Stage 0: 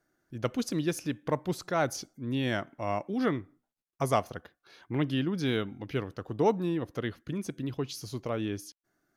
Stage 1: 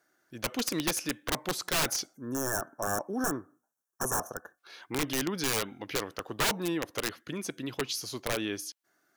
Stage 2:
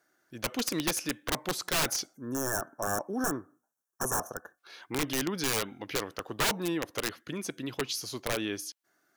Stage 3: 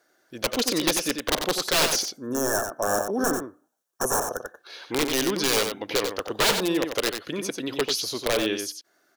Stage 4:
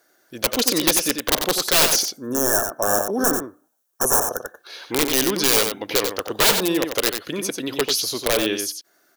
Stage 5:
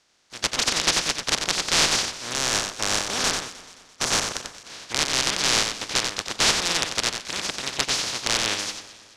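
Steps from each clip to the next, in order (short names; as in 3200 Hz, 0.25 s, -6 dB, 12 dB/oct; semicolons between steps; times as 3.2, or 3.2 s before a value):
HPF 720 Hz 6 dB/oct; wrapped overs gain 28.5 dB; spectral gain 2.17–4.58, 1800–5400 Hz -26 dB; gain +7 dB
nothing audible
graphic EQ 125/500/4000 Hz -5/+6/+5 dB; echo 92 ms -6.5 dB; gain +4 dB
high shelf 9700 Hz +10.5 dB; gain +3 dB
spectral contrast lowered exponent 0.12; ladder low-pass 7400 Hz, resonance 25%; echo with dull and thin repeats by turns 0.108 s, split 2000 Hz, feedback 68%, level -13.5 dB; gain +6 dB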